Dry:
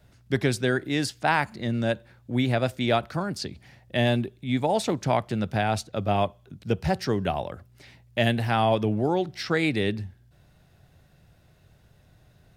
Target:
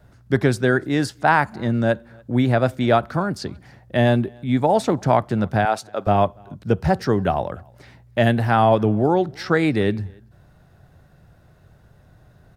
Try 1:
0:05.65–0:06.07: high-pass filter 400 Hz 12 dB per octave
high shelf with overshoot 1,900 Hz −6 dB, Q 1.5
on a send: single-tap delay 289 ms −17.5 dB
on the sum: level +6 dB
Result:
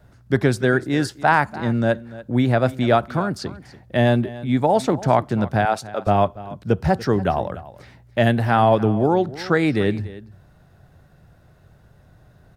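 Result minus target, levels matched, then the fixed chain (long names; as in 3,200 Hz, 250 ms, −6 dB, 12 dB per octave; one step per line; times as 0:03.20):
echo-to-direct +11.5 dB
0:05.65–0:06.07: high-pass filter 400 Hz 12 dB per octave
high shelf with overshoot 1,900 Hz −6 dB, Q 1.5
on a send: single-tap delay 289 ms −29 dB
on the sum: level +6 dB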